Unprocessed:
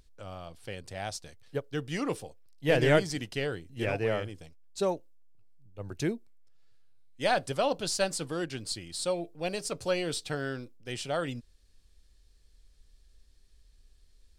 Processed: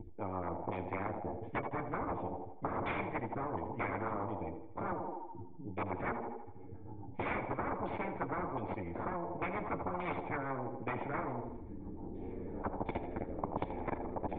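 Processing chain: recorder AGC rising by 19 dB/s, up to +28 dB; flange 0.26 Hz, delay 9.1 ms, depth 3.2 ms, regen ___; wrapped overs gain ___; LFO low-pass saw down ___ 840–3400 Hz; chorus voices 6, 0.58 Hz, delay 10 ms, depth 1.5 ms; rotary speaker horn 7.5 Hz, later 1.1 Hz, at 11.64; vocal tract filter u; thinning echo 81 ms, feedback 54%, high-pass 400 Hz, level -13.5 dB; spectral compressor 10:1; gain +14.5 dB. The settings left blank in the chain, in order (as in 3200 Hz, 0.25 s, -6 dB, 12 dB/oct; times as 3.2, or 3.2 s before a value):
-33%, 26.5 dB, 1.4 Hz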